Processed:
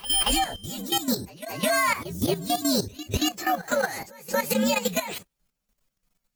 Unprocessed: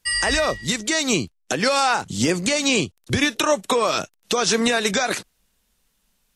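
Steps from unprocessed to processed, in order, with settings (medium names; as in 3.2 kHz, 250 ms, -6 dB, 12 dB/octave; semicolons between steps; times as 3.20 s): frequency axis rescaled in octaves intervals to 124%; band-stop 5 kHz, Q 28; pre-echo 232 ms -14 dB; level held to a coarse grid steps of 12 dB; trim +2 dB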